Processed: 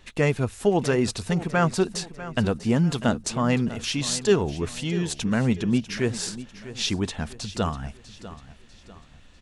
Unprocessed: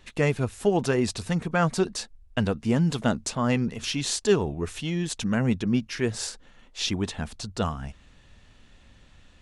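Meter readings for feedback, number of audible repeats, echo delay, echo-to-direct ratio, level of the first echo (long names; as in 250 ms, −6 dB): 40%, 3, 646 ms, −14.0 dB, −15.0 dB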